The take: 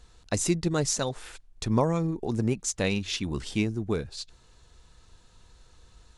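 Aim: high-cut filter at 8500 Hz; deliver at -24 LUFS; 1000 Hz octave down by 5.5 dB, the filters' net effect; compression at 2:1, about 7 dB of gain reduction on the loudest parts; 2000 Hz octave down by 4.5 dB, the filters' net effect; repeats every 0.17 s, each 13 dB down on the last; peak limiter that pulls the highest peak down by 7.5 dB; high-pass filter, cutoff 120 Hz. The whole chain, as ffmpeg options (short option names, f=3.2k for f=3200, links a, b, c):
-af "highpass=120,lowpass=8.5k,equalizer=f=1k:t=o:g=-6,equalizer=f=2k:t=o:g=-4.5,acompressor=threshold=-33dB:ratio=2,alimiter=level_in=1.5dB:limit=-24dB:level=0:latency=1,volume=-1.5dB,aecho=1:1:170|340|510:0.224|0.0493|0.0108,volume=12.5dB"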